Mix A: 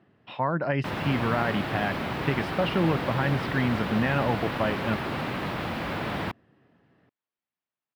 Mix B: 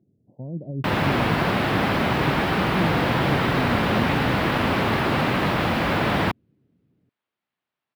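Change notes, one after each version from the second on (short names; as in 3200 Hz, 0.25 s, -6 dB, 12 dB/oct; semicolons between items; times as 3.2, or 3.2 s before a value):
speech: add Gaussian blur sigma 21 samples; background +9.0 dB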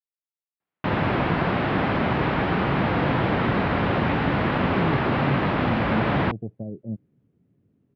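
speech: entry +2.00 s; background: add air absorption 290 m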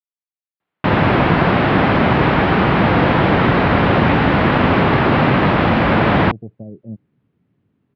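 background +9.0 dB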